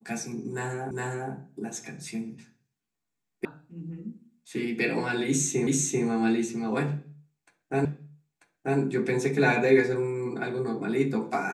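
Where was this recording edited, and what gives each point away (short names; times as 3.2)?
0.91 repeat of the last 0.41 s
3.45 sound cut off
5.67 repeat of the last 0.39 s
7.85 repeat of the last 0.94 s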